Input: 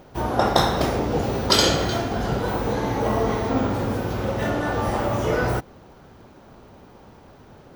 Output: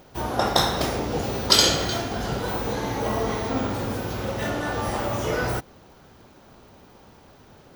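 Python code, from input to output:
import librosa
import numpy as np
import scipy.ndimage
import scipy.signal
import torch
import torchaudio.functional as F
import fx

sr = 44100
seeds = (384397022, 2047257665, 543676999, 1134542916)

y = fx.high_shelf(x, sr, hz=2300.0, db=8.0)
y = y * librosa.db_to_amplitude(-4.0)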